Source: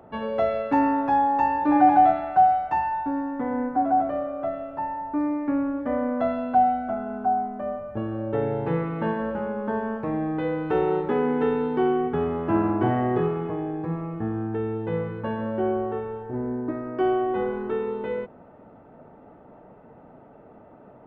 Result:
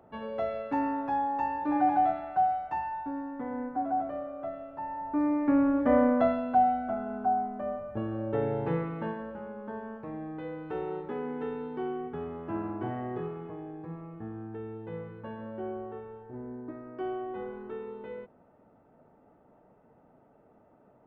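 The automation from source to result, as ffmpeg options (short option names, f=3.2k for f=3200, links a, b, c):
-af "volume=3.5dB,afade=t=in:st=4.8:d=1.18:silence=0.251189,afade=t=out:st=5.98:d=0.44:silence=0.421697,afade=t=out:st=8.67:d=0.59:silence=0.398107"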